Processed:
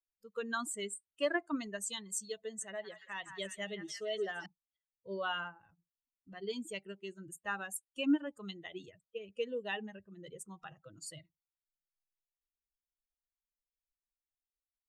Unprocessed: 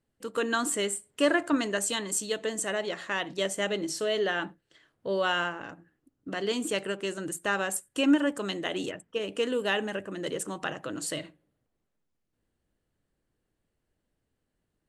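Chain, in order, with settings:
spectral dynamics exaggerated over time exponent 2
0:02.40–0:04.46: echo through a band-pass that steps 168 ms, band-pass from 1,300 Hz, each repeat 0.7 octaves, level −5.5 dB
level −5.5 dB

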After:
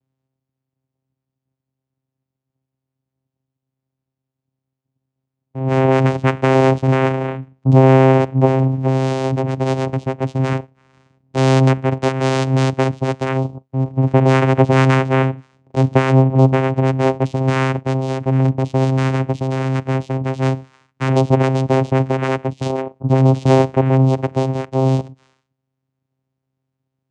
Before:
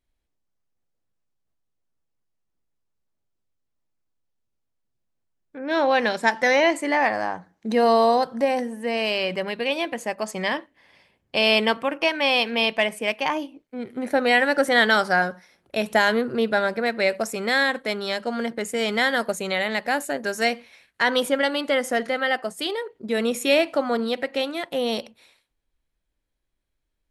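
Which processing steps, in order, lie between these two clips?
0:18.84–0:21.09: asymmetric clip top −29.5 dBFS
low-shelf EQ 440 Hz +6.5 dB
channel vocoder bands 4, saw 132 Hz
level +6 dB

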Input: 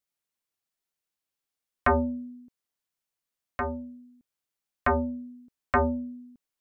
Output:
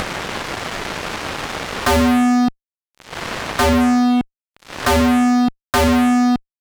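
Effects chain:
low-pass filter 1,700 Hz 12 dB per octave
upward compression, threshold −26 dBFS
fuzz pedal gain 52 dB, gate −58 dBFS

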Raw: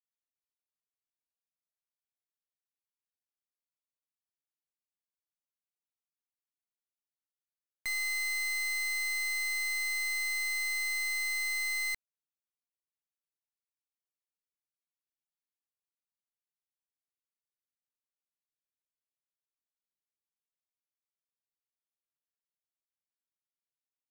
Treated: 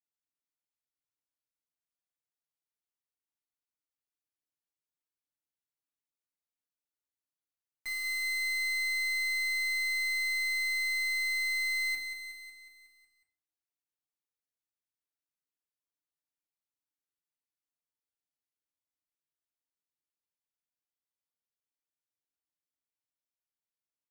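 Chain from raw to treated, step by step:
repeating echo 183 ms, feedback 59%, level −9 dB
feedback delay network reverb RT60 0.45 s, low-frequency decay 1.5×, high-frequency decay 0.7×, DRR −0.5 dB
level −8 dB

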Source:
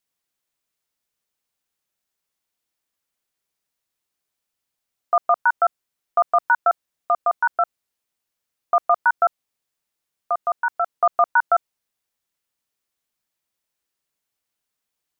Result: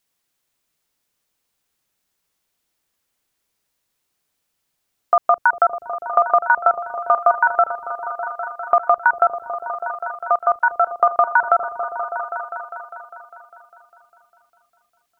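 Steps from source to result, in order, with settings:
downward compressor, threshold −18 dBFS, peak gain reduction 6 dB
echo whose low-pass opens from repeat to repeat 201 ms, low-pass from 200 Hz, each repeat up 1 octave, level −3 dB
level +7 dB

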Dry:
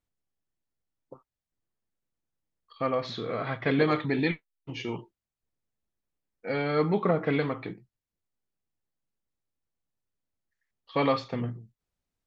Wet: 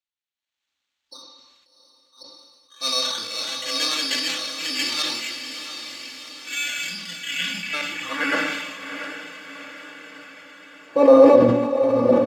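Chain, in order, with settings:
delay that plays each chunk backwards 558 ms, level −0.5 dB
low-shelf EQ 130 Hz +10 dB
comb filter 3.5 ms, depth 90%
automatic gain control gain up to 16 dB
transient designer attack −6 dB, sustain −2 dB
gain on a spectral selection 0:05.65–0:07.74, 260–1,400 Hz −22 dB
decimation without filtering 9×
band-pass filter sweep 4,400 Hz → 510 Hz, 0:07.09–0:09.56
feedback delay with all-pass diffusion 727 ms, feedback 58%, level −8 dB
on a send at −6 dB: convolution reverb RT60 1.1 s, pre-delay 3 ms
on the sum: level that may fall only so fast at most 40 dB per second
level +5 dB

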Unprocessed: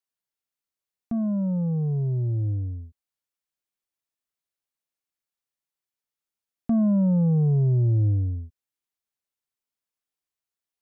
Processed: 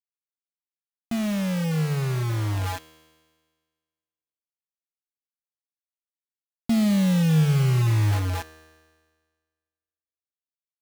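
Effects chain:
steady tone 830 Hz −40 dBFS
bit reduction 5 bits
tuned comb filter 79 Hz, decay 1.6 s, harmonics all, mix 60%
level +7 dB

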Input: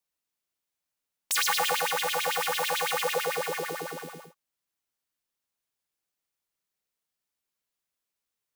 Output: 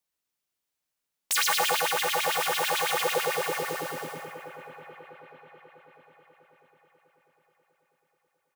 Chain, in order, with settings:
echo with a time of its own for lows and highs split 2,500 Hz, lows 648 ms, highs 188 ms, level −11.5 dB
pitch-shifted copies added −5 semitones −13 dB
level +1 dB

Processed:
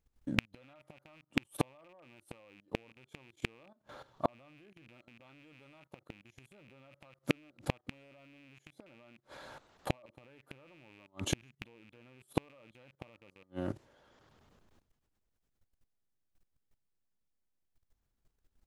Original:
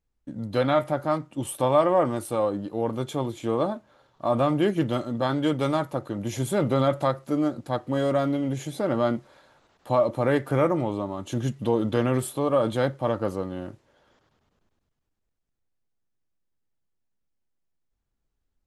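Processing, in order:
loose part that buzzes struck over −31 dBFS, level −16 dBFS
output level in coarse steps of 15 dB
gate with flip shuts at −23 dBFS, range −38 dB
level +9.5 dB

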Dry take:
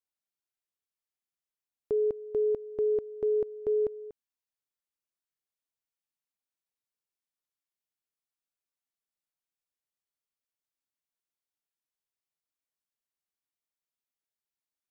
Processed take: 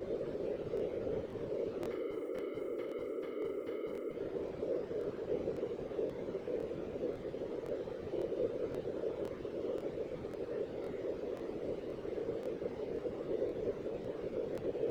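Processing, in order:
compressor on every frequency bin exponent 0.2
high-pass filter 49 Hz 24 dB per octave
bass and treble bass +6 dB, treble −7 dB
leveller curve on the samples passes 3
downward compressor 3 to 1, threshold −27 dBFS, peak gain reduction 5.5 dB
tuned comb filter 150 Hz, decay 0.5 s, harmonics all, mix 100%
random phases in short frames
regular buffer underruns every 0.53 s, samples 1,024, repeat, from 0:00.75
level +6.5 dB

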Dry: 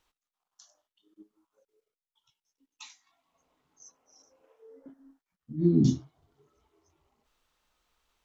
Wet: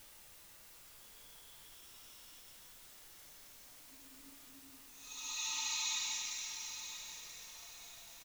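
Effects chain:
high-shelf EQ 2,600 Hz +10 dB
comb filter 3.2 ms
bit-depth reduction 10 bits, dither triangular
extreme stretch with random phases 6.6×, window 0.25 s, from 0:01.96
background noise brown −74 dBFS
on a send: repeating echo 983 ms, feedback 38%, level −10.5 dB
on the sum: level +2 dB

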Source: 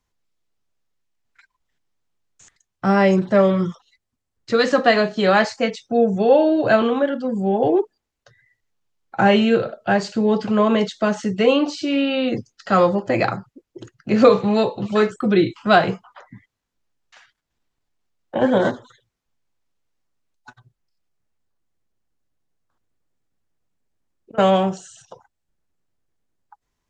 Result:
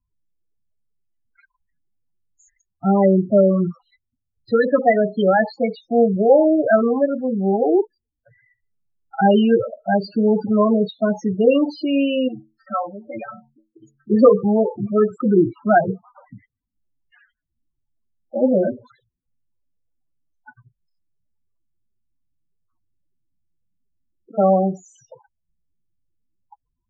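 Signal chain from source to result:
0:12.28–0:14.10: stiff-string resonator 66 Hz, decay 0.45 s, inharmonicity 0.03
spectral peaks only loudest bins 8
level +1.5 dB

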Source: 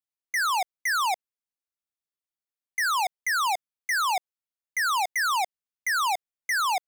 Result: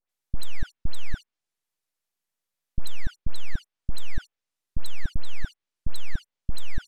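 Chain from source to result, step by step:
full-wave rectification
treble cut that deepens with the level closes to 1,900 Hz, closed at −25 dBFS
all-pass dispersion highs, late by 95 ms, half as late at 1,900 Hz
level +9.5 dB

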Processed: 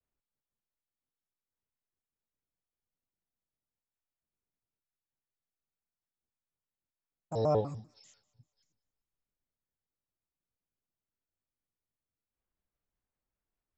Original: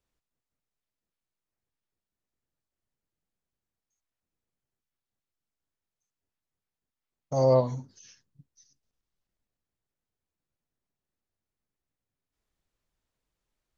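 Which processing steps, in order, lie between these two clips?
low-pass that shuts in the quiet parts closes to 2,100 Hz, open at −42.5 dBFS
delay with a high-pass on its return 199 ms, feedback 44%, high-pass 1,800 Hz, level −21 dB
pitch modulation by a square or saw wave square 5.1 Hz, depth 250 cents
level −7 dB

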